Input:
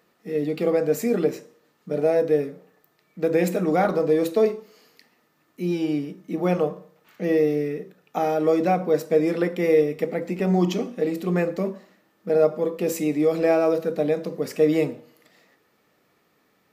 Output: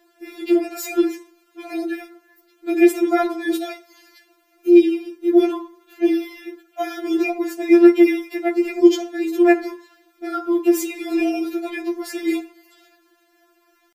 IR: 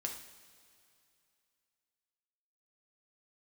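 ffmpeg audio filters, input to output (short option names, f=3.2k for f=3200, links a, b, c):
-filter_complex "[0:a]atempo=1.2,asplit=2[a][b];[1:a]atrim=start_sample=2205[c];[b][c]afir=irnorm=-1:irlink=0,volume=-19.5dB[d];[a][d]amix=inputs=2:normalize=0,afftfilt=real='re*4*eq(mod(b,16),0)':imag='im*4*eq(mod(b,16),0)':win_size=2048:overlap=0.75,volume=7.5dB"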